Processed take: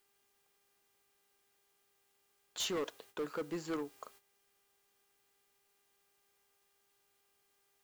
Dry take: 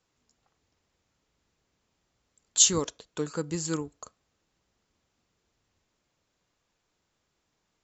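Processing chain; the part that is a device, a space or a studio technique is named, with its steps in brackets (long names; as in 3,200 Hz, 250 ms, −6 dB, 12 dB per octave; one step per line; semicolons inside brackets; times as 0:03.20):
aircraft radio (band-pass filter 310–2,600 Hz; hard clipping −31 dBFS, distortion −9 dB; hum with harmonics 400 Hz, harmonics 8, −69 dBFS −3 dB per octave; white noise bed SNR 18 dB; noise gate −58 dBFS, range −12 dB)
level −1.5 dB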